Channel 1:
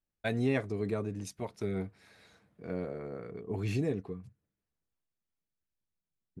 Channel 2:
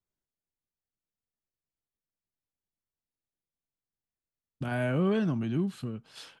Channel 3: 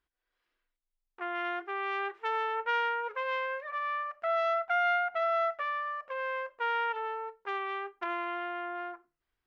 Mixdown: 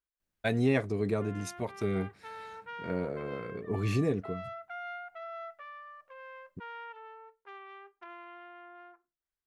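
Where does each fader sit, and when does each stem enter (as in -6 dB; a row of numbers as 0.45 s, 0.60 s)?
+3.0 dB, mute, -13.5 dB; 0.20 s, mute, 0.00 s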